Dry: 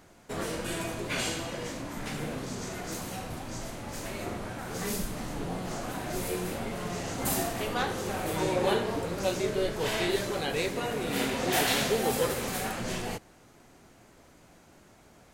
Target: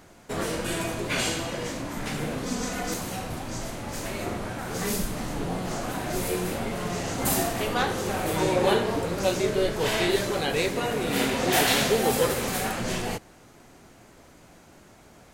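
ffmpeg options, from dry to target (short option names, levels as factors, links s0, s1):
-filter_complex "[0:a]asettb=1/sr,asplit=3[s0][s1][s2];[s0]atrim=end=2.454[s3];[s1]atrim=start=2.45:end=2.94,asetpts=PTS-STARTPTS,afade=t=in:d=0.004:c=qsin,afade=t=out:st=0.486:d=0.004:c=qsin,aecho=1:1:4:0.9,atrim=end_sample=21609[s4];[s2]atrim=start=2.936[s5];[s3][s4]acrossfade=d=0.004:c1=hsin:c2=qsin[s6];[s6][s5]acrossfade=d=0.004:c1=qsin:c2=hsin,volume=1.68"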